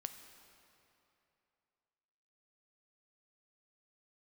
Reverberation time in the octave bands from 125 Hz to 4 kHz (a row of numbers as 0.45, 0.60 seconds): 2.8, 2.7, 2.9, 2.8, 2.6, 2.2 seconds